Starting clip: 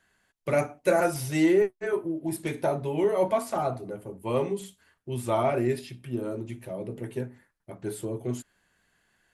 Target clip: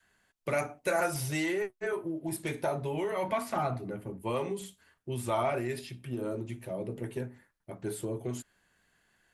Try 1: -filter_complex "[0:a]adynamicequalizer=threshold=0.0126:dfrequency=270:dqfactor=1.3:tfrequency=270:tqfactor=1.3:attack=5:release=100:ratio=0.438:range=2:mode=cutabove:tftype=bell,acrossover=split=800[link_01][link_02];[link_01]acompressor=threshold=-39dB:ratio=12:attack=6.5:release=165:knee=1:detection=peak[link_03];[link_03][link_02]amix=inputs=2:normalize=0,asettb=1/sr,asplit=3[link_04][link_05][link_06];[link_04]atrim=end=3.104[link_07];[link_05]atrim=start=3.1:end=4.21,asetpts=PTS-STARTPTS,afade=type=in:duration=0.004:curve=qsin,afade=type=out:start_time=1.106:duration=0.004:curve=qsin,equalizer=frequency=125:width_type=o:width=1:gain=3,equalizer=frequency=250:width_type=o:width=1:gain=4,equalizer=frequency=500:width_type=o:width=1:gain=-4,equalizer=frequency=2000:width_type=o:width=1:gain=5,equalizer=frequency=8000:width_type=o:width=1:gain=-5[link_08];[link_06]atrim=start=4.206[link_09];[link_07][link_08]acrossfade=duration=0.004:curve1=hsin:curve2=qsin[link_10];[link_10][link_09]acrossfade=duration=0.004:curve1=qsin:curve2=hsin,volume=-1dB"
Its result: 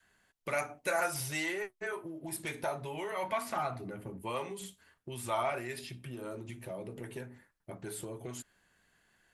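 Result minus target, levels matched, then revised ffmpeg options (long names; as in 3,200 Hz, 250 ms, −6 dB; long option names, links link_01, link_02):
downward compressor: peak gain reduction +9 dB
-filter_complex "[0:a]adynamicequalizer=threshold=0.0126:dfrequency=270:dqfactor=1.3:tfrequency=270:tqfactor=1.3:attack=5:release=100:ratio=0.438:range=2:mode=cutabove:tftype=bell,acrossover=split=800[link_01][link_02];[link_01]acompressor=threshold=-29dB:ratio=12:attack=6.5:release=165:knee=1:detection=peak[link_03];[link_03][link_02]amix=inputs=2:normalize=0,asettb=1/sr,asplit=3[link_04][link_05][link_06];[link_04]atrim=end=3.104[link_07];[link_05]atrim=start=3.1:end=4.21,asetpts=PTS-STARTPTS,afade=type=in:duration=0.004:curve=qsin,afade=type=out:start_time=1.106:duration=0.004:curve=qsin,equalizer=frequency=125:width_type=o:width=1:gain=3,equalizer=frequency=250:width_type=o:width=1:gain=4,equalizer=frequency=500:width_type=o:width=1:gain=-4,equalizer=frequency=2000:width_type=o:width=1:gain=5,equalizer=frequency=8000:width_type=o:width=1:gain=-5[link_08];[link_06]atrim=start=4.206[link_09];[link_07][link_08]acrossfade=duration=0.004:curve1=hsin:curve2=qsin[link_10];[link_10][link_09]acrossfade=duration=0.004:curve1=qsin:curve2=hsin,volume=-1dB"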